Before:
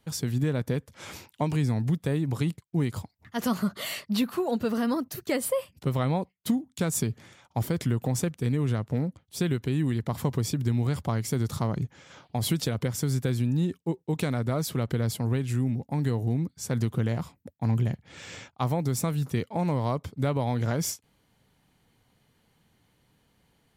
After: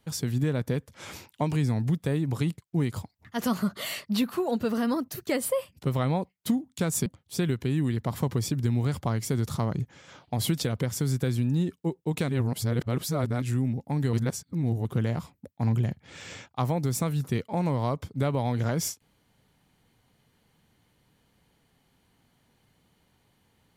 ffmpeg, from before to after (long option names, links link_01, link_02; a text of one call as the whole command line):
ffmpeg -i in.wav -filter_complex "[0:a]asplit=6[link_01][link_02][link_03][link_04][link_05][link_06];[link_01]atrim=end=7.062[link_07];[link_02]atrim=start=9.078:end=14.312[link_08];[link_03]atrim=start=14.308:end=15.442,asetpts=PTS-STARTPTS,areverse[link_09];[link_04]atrim=start=15.438:end=16.152[link_10];[link_05]atrim=start=16.148:end=16.872,asetpts=PTS-STARTPTS,areverse[link_11];[link_06]atrim=start=16.868[link_12];[link_07][link_08]acrossfade=duration=0.004:curve1=hsin:curve2=hsin[link_13];[link_13][link_09]acrossfade=duration=0.004:curve1=hsin:curve2=hsin[link_14];[link_14][link_10]acrossfade=duration=0.004:curve1=hsin:curve2=hsin[link_15];[link_15][link_11]acrossfade=duration=0.004:curve1=hsin:curve2=hsin[link_16];[link_16][link_12]acrossfade=duration=0.004:curve1=hsin:curve2=hsin" out.wav